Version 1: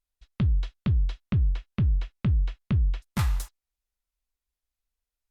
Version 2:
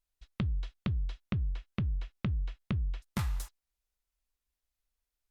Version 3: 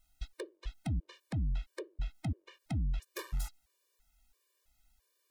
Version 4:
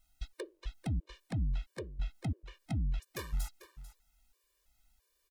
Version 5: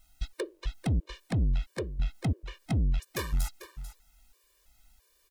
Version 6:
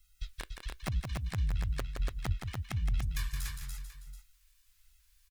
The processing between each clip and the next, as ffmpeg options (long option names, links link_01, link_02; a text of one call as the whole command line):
ffmpeg -i in.wav -af "acompressor=threshold=-30dB:ratio=6" out.wav
ffmpeg -i in.wav -af "aeval=exprs='0.133*sin(PI/2*4.47*val(0)/0.133)':channel_layout=same,alimiter=level_in=4dB:limit=-24dB:level=0:latency=1:release=98,volume=-4dB,afftfilt=real='re*gt(sin(2*PI*1.5*pts/sr)*(1-2*mod(floor(b*sr/1024/310),2)),0)':imag='im*gt(sin(2*PI*1.5*pts/sr)*(1-2*mod(floor(b*sr/1024/310),2)),0)':win_size=1024:overlap=0.75,volume=-1dB" out.wav
ffmpeg -i in.wav -af "aecho=1:1:443:0.178" out.wav
ffmpeg -i in.wav -af "asoftclip=type=tanh:threshold=-30.5dB,volume=9dB" out.wav
ffmpeg -i in.wav -filter_complex "[0:a]flanger=delay=4.9:depth=8.3:regen=-60:speed=1:shape=sinusoidal,acrossover=split=150|1200|3300[link_01][link_02][link_03][link_04];[link_02]acrusher=bits=4:mix=0:aa=0.000001[link_05];[link_01][link_05][link_03][link_04]amix=inputs=4:normalize=0,aecho=1:1:169.1|288.6:0.501|0.631" out.wav